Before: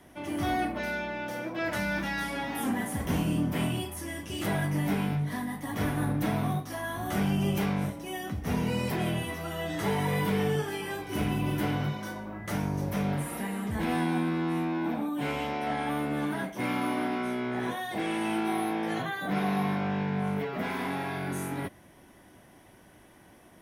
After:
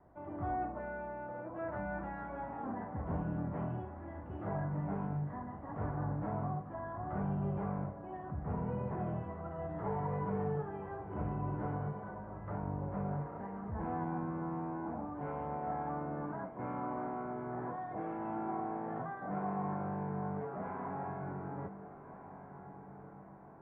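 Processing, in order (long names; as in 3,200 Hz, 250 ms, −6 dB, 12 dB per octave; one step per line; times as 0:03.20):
low-pass filter 1,200 Hz 24 dB per octave
parametric band 260 Hz −8.5 dB 1.2 octaves
on a send: feedback delay with all-pass diffusion 1,398 ms, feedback 53%, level −12 dB
on the sum: level −4.5 dB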